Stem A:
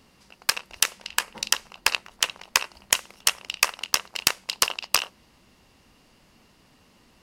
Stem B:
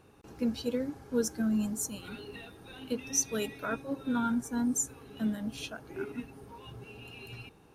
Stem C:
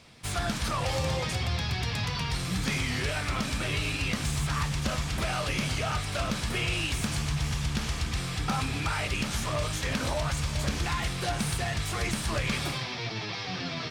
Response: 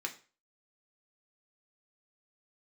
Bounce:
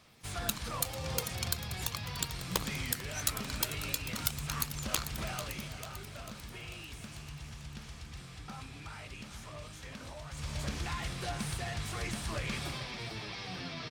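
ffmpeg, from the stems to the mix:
-filter_complex "[0:a]aemphasis=mode=production:type=bsi,aeval=exprs='val(0)*sin(2*PI*1500*n/s)':c=same,aphaser=in_gain=1:out_gain=1:delay=2.2:decay=0.57:speed=0.4:type=sinusoidal,volume=0.2,asplit=2[s0][s1];[s1]volume=0.188[s2];[1:a]highpass=430,volume=0.2[s3];[2:a]volume=1.12,afade=t=out:st=5.22:d=0.52:silence=0.375837,afade=t=in:st=10.3:d=0.2:silence=0.354813,asplit=2[s4][s5];[s5]volume=0.224[s6];[s2][s6]amix=inputs=2:normalize=0,aecho=0:1:444|888|1332|1776|2220|2664|3108|3552:1|0.56|0.314|0.176|0.0983|0.0551|0.0308|0.0173[s7];[s0][s3][s4][s7]amix=inputs=4:normalize=0,alimiter=limit=0.282:level=0:latency=1:release=324"

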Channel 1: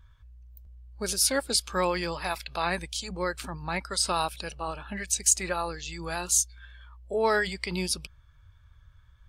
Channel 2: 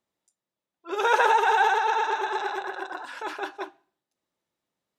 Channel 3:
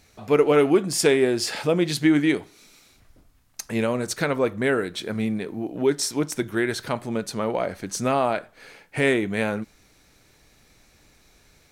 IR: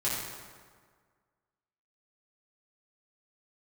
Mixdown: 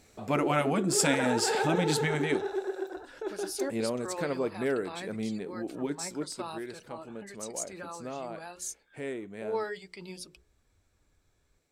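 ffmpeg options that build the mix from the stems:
-filter_complex "[0:a]bandreject=f=60:t=h:w=6,bandreject=f=120:t=h:w=6,bandreject=f=180:t=h:w=6,bandreject=f=240:t=h:w=6,bandreject=f=300:t=h:w=6,bandreject=f=360:t=h:w=6,bandreject=f=420:t=h:w=6,bandreject=f=480:t=h:w=6,bandreject=f=540:t=h:w=6,flanger=delay=2.4:depth=4.6:regen=49:speed=0.61:shape=sinusoidal,adelay=2300,volume=0.282[s0];[1:a]equalizer=f=400:t=o:w=0.67:g=9,equalizer=f=1000:t=o:w=0.67:g=-12,equalizer=f=2500:t=o:w=0.67:g=-5,volume=0.335[s1];[2:a]equalizer=f=7700:w=6:g=10,volume=0.562,afade=t=out:st=2.03:d=0.59:silence=0.398107,afade=t=out:st=5.87:d=0.55:silence=0.375837[s2];[s0][s1][s2]amix=inputs=3:normalize=0,equalizer=f=390:t=o:w=2.3:g=7,afftfilt=real='re*lt(hypot(re,im),0.631)':imag='im*lt(hypot(re,im),0.631)':win_size=1024:overlap=0.75"

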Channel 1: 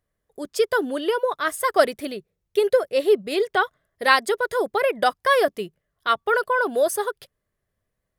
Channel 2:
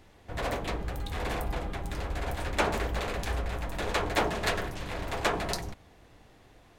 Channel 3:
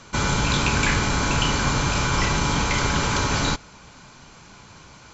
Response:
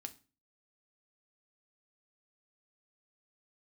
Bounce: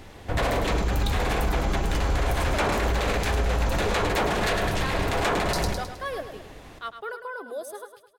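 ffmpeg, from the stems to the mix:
-filter_complex "[0:a]adelay=750,volume=0.188,asplit=2[s0][s1];[s1]volume=0.335[s2];[1:a]aeval=exprs='0.266*sin(PI/2*1.41*val(0)/0.266)':c=same,volume=1.26,asplit=3[s3][s4][s5];[s4]volume=0.708[s6];[s5]volume=0.501[s7];[2:a]alimiter=limit=0.158:level=0:latency=1,acrusher=bits=10:mix=0:aa=0.000001,adelay=500,volume=0.335[s8];[3:a]atrim=start_sample=2205[s9];[s6][s9]afir=irnorm=-1:irlink=0[s10];[s2][s7]amix=inputs=2:normalize=0,aecho=0:1:105|210|315|420|525|630:1|0.45|0.202|0.0911|0.041|0.0185[s11];[s0][s3][s8][s10][s11]amix=inputs=5:normalize=0,alimiter=limit=0.158:level=0:latency=1:release=49"

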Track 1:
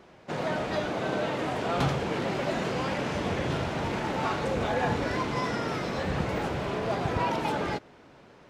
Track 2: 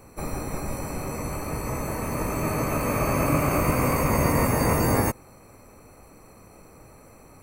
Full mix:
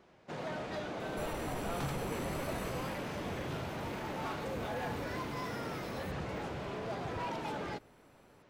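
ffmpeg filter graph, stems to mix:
-filter_complex "[0:a]asoftclip=type=hard:threshold=0.0596,volume=0.355[s0];[1:a]acompressor=threshold=0.0447:ratio=6,asoftclip=type=tanh:threshold=0.0376,adelay=1000,volume=0.447,afade=t=out:st=2.62:d=0.43:silence=0.281838[s1];[s0][s1]amix=inputs=2:normalize=0"

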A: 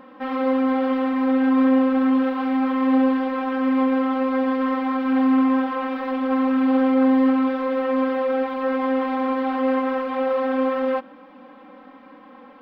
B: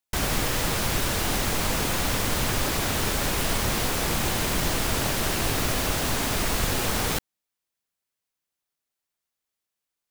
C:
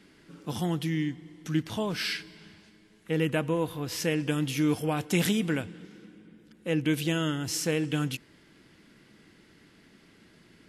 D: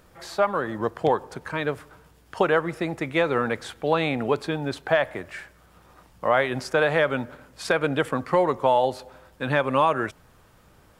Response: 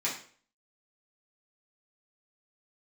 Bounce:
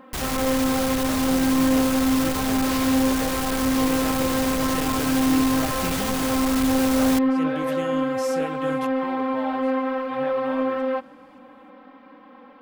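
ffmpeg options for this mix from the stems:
-filter_complex "[0:a]acontrast=68,volume=0.376[s0];[1:a]asoftclip=type=hard:threshold=0.0335,volume=1.41[s1];[2:a]adelay=700,volume=0.447[s2];[3:a]adelay=700,volume=0.15[s3];[s0][s1][s2][s3]amix=inputs=4:normalize=0"

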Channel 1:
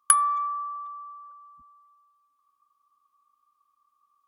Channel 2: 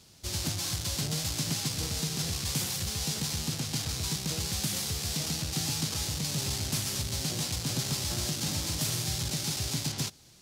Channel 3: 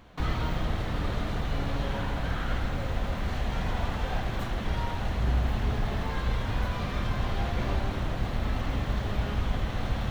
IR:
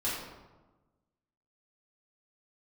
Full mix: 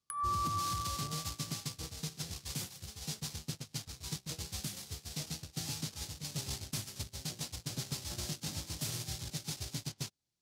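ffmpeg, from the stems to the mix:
-filter_complex "[0:a]volume=1.41[s0];[1:a]volume=0.841[s1];[s0][s1]amix=inputs=2:normalize=0,agate=range=0.0316:threshold=0.0282:ratio=16:detection=peak,acrossover=split=490[s2][s3];[s3]acompressor=threshold=0.0316:ratio=4[s4];[s2][s4]amix=inputs=2:normalize=0,alimiter=level_in=1.19:limit=0.0631:level=0:latency=1:release=159,volume=0.841"

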